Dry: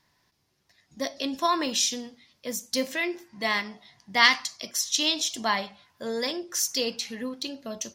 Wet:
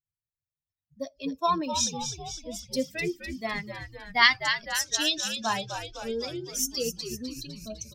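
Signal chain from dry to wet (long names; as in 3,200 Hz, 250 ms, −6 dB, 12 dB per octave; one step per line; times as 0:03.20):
spectral dynamics exaggerated over time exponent 2
0:01.92–0:02.59: low-pass filter 7,900 Hz 12 dB per octave
echo with shifted repeats 253 ms, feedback 60%, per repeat −95 Hz, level −8 dB
level +1.5 dB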